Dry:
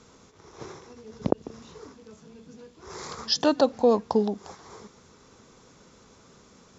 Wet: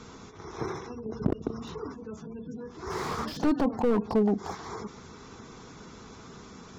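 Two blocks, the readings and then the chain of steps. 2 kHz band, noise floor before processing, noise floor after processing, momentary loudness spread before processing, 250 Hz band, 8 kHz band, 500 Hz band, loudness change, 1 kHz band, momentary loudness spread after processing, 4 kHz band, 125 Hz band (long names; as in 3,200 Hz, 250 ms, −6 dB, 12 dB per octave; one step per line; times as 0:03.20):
+0.5 dB, −56 dBFS, −48 dBFS, 22 LU, +1.0 dB, can't be measured, −4.5 dB, −5.5 dB, −2.0 dB, 21 LU, −12.0 dB, +3.5 dB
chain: gate on every frequency bin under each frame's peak −25 dB strong
parametric band 550 Hz −11.5 dB 0.22 octaves
in parallel at −1 dB: compressor whose output falls as the input rises −32 dBFS, ratio −1
on the sum: high-frequency loss of the air 73 metres
echo ahead of the sound 200 ms −21 dB
slew-rate limiting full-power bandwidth 40 Hz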